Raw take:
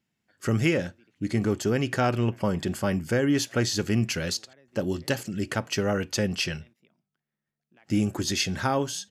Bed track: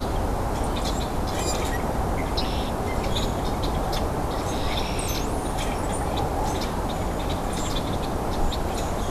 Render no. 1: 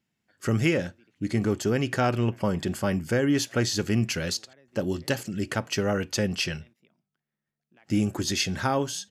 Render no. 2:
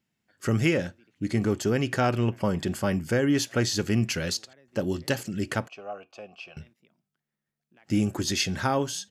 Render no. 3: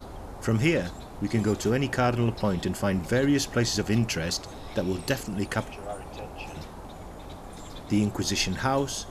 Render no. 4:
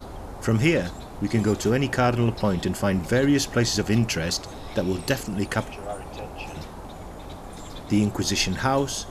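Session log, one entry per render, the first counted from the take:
no audible change
5.68–6.57 s: vowel filter a
add bed track -15 dB
trim +3 dB

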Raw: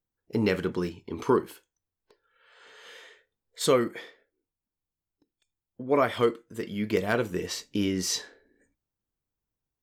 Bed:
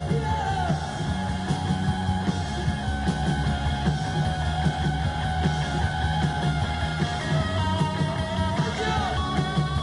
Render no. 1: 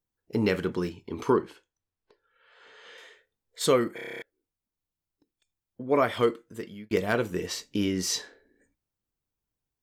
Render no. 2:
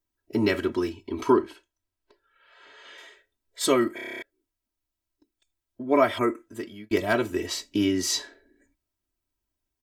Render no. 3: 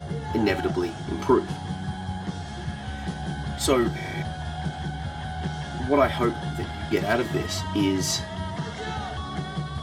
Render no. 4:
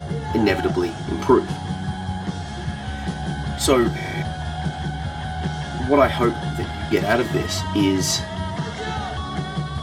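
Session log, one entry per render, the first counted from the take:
1.32–2.98 s: distance through air 83 m; 3.95 s: stutter in place 0.03 s, 9 plays; 6.47–6.91 s: fade out
6.20–6.41 s: spectral replace 2.7–5.9 kHz after; comb 3.1 ms, depth 95%
add bed -6.5 dB
trim +4.5 dB

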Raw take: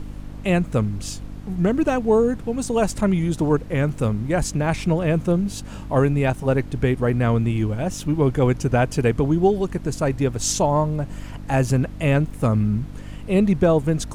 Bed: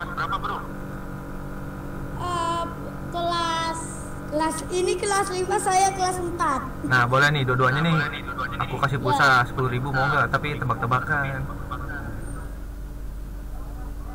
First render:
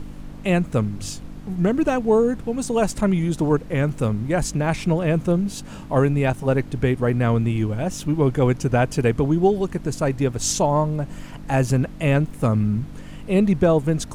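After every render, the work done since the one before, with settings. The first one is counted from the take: de-hum 50 Hz, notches 2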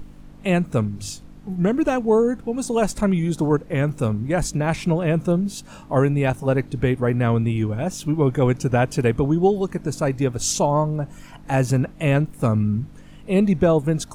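noise print and reduce 7 dB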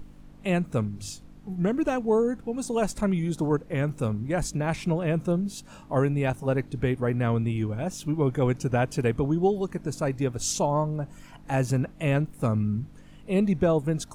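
trim -5.5 dB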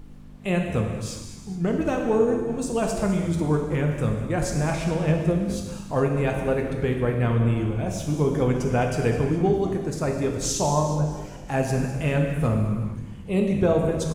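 frequency-shifting echo 205 ms, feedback 56%, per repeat -98 Hz, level -15 dB; gated-style reverb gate 480 ms falling, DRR 1.5 dB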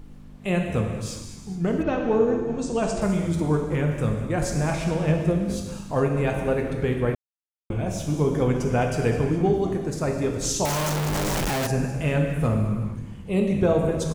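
1.82–3.00 s: low-pass 4.5 kHz -> 8.9 kHz 24 dB/octave; 7.15–7.70 s: mute; 10.65–11.67 s: one-bit comparator

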